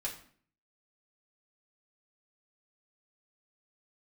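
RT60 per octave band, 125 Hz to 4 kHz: 0.70, 0.65, 0.55, 0.50, 0.50, 0.40 seconds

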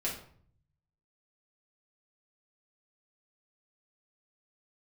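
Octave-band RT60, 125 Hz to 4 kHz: 1.3, 0.75, 0.55, 0.55, 0.45, 0.40 seconds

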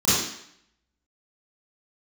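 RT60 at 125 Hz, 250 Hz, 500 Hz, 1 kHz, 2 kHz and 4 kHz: 0.55, 0.70, 0.65, 0.75, 0.75, 0.70 seconds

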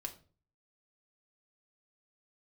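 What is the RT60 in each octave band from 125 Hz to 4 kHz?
0.65, 0.50, 0.45, 0.35, 0.30, 0.30 seconds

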